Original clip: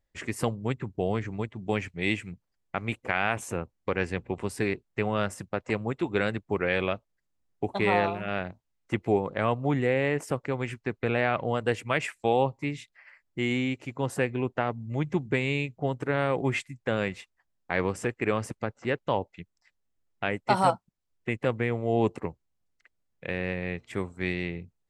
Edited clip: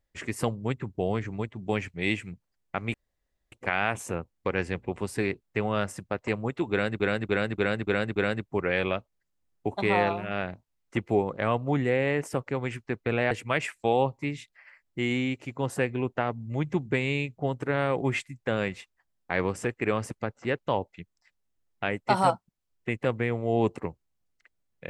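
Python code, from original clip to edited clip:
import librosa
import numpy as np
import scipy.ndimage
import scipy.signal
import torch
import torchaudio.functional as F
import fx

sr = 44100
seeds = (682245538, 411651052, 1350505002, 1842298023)

y = fx.edit(x, sr, fx.insert_room_tone(at_s=2.94, length_s=0.58),
    fx.repeat(start_s=6.13, length_s=0.29, count=6),
    fx.cut(start_s=11.28, length_s=0.43), tone=tone)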